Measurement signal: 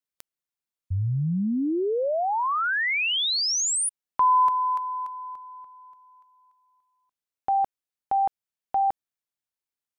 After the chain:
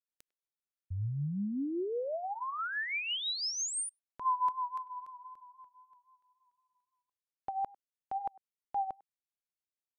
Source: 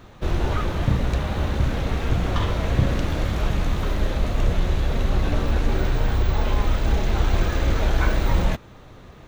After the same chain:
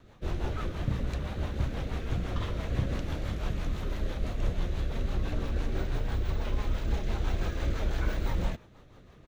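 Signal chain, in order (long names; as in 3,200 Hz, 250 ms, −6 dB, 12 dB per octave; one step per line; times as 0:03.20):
rotating-speaker cabinet horn 6 Hz
far-end echo of a speakerphone 100 ms, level −23 dB
pitch vibrato 3.8 Hz 34 cents
level −8 dB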